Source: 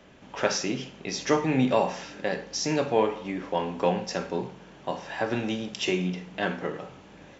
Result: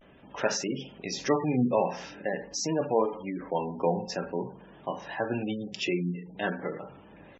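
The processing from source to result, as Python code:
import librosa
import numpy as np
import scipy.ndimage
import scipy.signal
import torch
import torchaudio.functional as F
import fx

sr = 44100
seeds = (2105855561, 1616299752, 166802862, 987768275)

y = fx.vibrato(x, sr, rate_hz=0.47, depth_cents=63.0)
y = fx.spec_gate(y, sr, threshold_db=-20, keep='strong')
y = F.gain(torch.from_numpy(y), -2.0).numpy()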